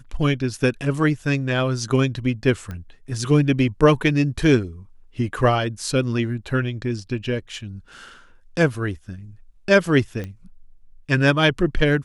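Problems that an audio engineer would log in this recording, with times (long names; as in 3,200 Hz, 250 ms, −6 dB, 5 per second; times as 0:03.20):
0:02.71: click −20 dBFS
0:10.24: click −19 dBFS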